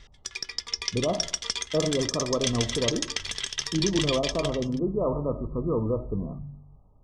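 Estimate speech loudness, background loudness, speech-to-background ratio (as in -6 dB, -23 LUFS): -29.0 LUFS, -30.0 LUFS, 1.0 dB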